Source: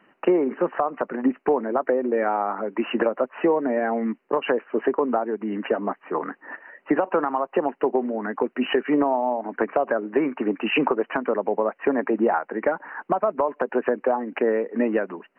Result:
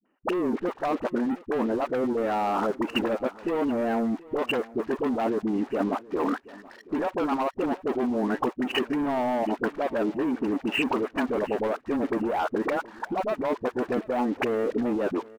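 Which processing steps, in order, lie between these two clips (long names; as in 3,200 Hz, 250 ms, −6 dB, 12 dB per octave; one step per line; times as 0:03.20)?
octave-band graphic EQ 125/250/2,000 Hz −9/+7/−5 dB
leveller curve on the samples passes 3
output level in coarse steps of 23 dB
all-pass dispersion highs, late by 57 ms, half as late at 420 Hz
on a send: repeating echo 728 ms, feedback 23%, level −21 dB
on the sum: level −2.5 dB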